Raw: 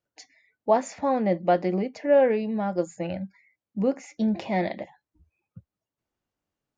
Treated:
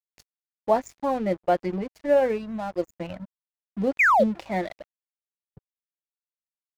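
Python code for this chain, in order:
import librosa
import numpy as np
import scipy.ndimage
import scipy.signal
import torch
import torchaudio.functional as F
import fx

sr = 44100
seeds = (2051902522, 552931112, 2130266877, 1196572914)

y = fx.add_hum(x, sr, base_hz=50, snr_db=23)
y = fx.dereverb_blind(y, sr, rt60_s=1.1)
y = fx.spec_paint(y, sr, seeds[0], shape='fall', start_s=3.99, length_s=0.25, low_hz=480.0, high_hz=2600.0, level_db=-17.0)
y = np.sign(y) * np.maximum(np.abs(y) - 10.0 ** (-42.0 / 20.0), 0.0)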